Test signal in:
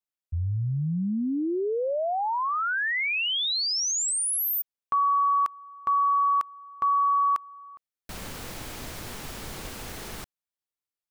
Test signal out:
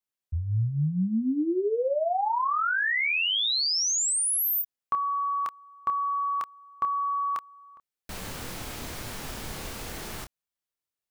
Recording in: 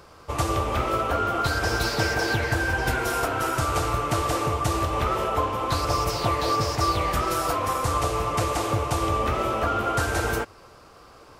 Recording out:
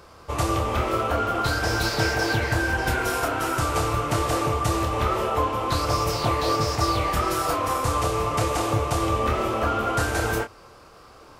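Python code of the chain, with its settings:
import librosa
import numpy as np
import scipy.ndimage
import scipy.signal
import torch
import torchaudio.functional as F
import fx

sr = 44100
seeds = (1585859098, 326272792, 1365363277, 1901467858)

y = fx.doubler(x, sr, ms=27.0, db=-6.5)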